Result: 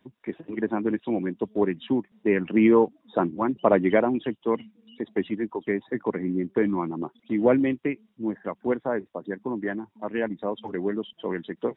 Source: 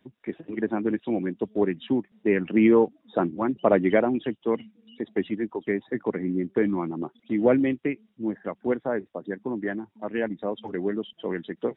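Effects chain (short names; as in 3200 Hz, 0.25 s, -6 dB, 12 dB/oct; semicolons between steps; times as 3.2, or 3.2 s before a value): bell 1000 Hz +5 dB 0.34 oct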